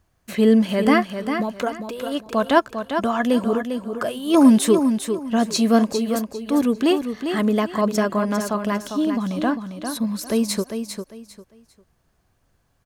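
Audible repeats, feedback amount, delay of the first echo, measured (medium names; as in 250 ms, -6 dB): 3, 25%, 400 ms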